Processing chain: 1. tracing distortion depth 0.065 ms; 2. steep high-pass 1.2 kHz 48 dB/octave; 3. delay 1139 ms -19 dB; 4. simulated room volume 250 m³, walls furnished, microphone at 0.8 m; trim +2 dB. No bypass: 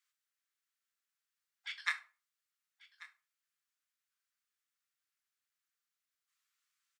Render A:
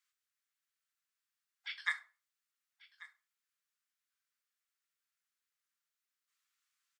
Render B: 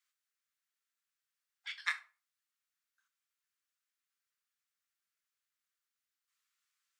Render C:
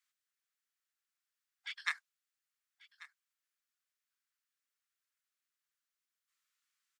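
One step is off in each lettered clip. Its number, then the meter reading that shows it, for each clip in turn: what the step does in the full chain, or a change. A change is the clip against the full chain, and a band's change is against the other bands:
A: 1, crest factor change -3.0 dB; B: 3, momentary loudness spread change -9 LU; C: 4, echo-to-direct -6.5 dB to -19.0 dB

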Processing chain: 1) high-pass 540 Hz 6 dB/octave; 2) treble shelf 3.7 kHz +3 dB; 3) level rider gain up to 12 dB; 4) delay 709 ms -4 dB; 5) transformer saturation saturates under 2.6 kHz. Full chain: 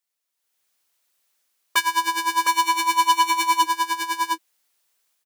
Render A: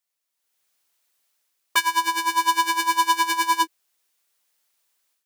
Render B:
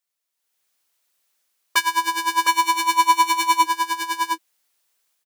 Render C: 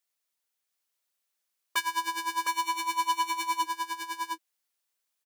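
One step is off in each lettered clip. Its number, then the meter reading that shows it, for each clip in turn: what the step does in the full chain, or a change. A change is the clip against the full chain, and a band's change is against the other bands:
4, momentary loudness spread change -3 LU; 5, loudness change +1.0 LU; 3, loudness change -9.5 LU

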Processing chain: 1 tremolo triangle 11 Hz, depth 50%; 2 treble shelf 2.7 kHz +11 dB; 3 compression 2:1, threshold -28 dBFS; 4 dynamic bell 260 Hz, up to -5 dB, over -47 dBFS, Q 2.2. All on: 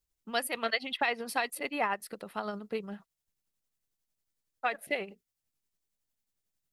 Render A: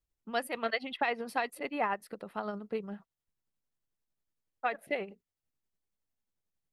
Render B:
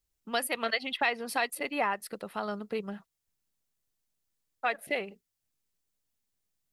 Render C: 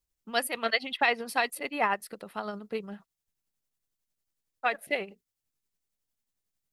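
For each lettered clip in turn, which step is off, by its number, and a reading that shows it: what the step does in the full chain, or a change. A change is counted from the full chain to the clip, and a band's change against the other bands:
2, 8 kHz band -9.5 dB; 1, loudness change +1.5 LU; 3, momentary loudness spread change +4 LU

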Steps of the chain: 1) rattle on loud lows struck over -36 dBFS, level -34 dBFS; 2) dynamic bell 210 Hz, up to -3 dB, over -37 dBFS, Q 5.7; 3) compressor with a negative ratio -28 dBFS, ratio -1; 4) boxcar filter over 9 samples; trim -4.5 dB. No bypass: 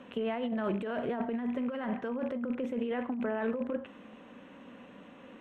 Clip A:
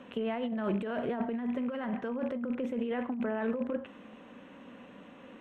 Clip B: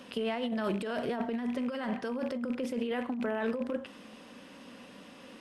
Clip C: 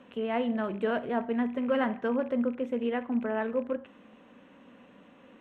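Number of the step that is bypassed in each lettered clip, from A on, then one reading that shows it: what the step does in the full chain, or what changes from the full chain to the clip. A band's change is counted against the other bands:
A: 2, 125 Hz band +2.0 dB; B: 4, 2 kHz band +2.0 dB; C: 3, momentary loudness spread change -15 LU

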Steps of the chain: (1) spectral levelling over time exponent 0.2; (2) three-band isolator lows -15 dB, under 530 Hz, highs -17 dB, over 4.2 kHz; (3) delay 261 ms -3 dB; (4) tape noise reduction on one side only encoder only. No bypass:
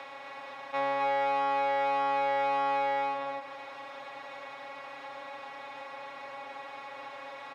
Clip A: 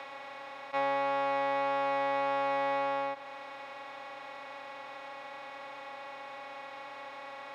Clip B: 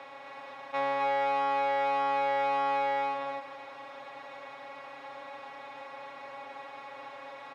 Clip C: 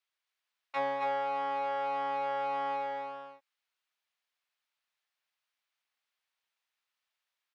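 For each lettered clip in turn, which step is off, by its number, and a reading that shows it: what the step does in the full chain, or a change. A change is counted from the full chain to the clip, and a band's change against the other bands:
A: 3, momentary loudness spread change -1 LU; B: 4, momentary loudness spread change +2 LU; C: 1, 2 kHz band -2.5 dB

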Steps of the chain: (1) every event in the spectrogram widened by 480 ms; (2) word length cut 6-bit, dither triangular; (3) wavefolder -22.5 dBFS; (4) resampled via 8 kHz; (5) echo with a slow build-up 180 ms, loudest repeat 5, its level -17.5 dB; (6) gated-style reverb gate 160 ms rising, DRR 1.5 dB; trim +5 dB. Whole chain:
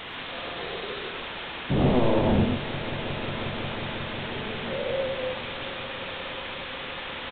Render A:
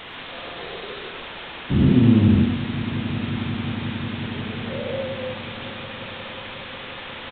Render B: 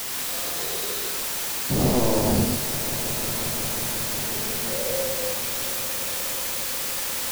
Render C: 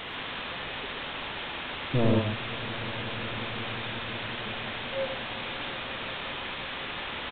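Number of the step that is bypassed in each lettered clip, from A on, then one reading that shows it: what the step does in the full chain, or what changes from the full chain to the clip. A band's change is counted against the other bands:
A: 3, crest factor change +2.0 dB; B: 4, 4 kHz band +4.5 dB; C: 1, 2 kHz band +4.0 dB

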